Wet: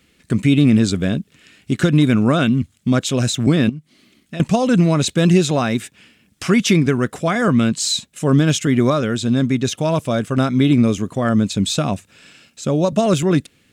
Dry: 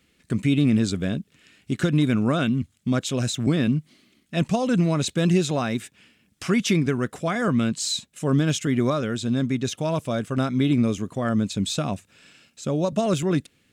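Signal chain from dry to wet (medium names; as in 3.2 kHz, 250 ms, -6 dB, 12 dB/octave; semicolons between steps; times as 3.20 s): 3.69–4.40 s: compression 6:1, threshold -35 dBFS, peak gain reduction 16 dB; trim +6.5 dB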